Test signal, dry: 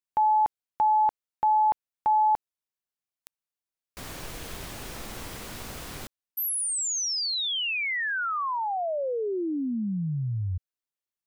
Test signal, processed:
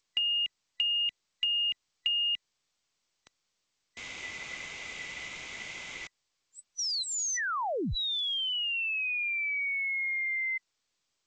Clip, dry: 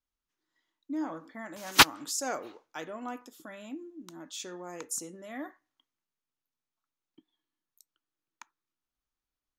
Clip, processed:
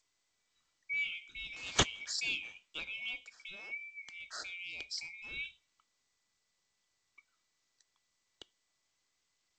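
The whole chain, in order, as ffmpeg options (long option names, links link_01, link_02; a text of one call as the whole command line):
ffmpeg -i in.wav -filter_complex "[0:a]afftfilt=real='real(if(lt(b,920),b+92*(1-2*mod(floor(b/92),2)),b),0)':imag='imag(if(lt(b,920),b+92*(1-2*mod(floor(b/92),2)),b),0)':win_size=2048:overlap=0.75,acrossover=split=300[link_01][link_02];[link_02]acompressor=threshold=-27dB:ratio=10:attack=31:release=47:knee=2.83:detection=peak[link_03];[link_01][link_03]amix=inputs=2:normalize=0,volume=-2.5dB" -ar 16000 -c:a g722 out.g722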